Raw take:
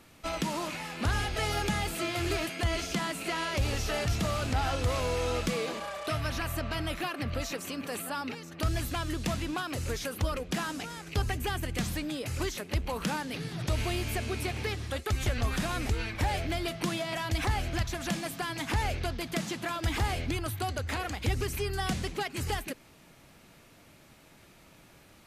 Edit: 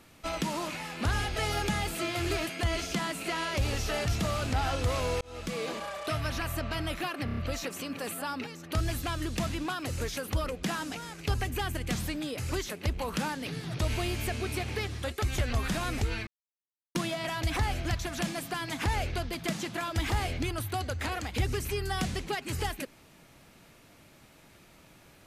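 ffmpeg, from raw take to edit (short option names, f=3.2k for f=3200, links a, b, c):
-filter_complex "[0:a]asplit=8[a][b][c][d][e][f][g][h];[a]atrim=end=5.21,asetpts=PTS-STARTPTS,afade=t=out:st=5.206:d=0.004:c=hsin[i];[b]atrim=start=5.21:end=7.282,asetpts=PTS-STARTPTS,afade=t=in:d=0.5[j];[c]atrim=start=7.248:end=7.282[k];[d]atrim=start=7.248:end=7.282[l];[e]atrim=start=7.248:end=7.282[m];[f]atrim=start=7.248:end=16.15,asetpts=PTS-STARTPTS,afade=t=out:st=8.898:d=0.004:c=hsin[n];[g]atrim=start=16.15:end=16.83,asetpts=PTS-STARTPTS,volume=0[o];[h]atrim=start=16.83,asetpts=PTS-STARTPTS,afade=t=in:d=0.004:c=hsin[p];[i][j]concat=n=2:v=0:a=1[q];[q][k]acrossfade=d=0.004:c1=hsin:c2=hsin[r];[r][l]acrossfade=d=0.004:c1=hsin:c2=hsin[s];[s][m]acrossfade=d=0.004:c1=hsin:c2=hsin[t];[n][o][p]concat=n=3:v=0:a=1[u];[t][u]acrossfade=d=0.004:c1=hsin:c2=hsin"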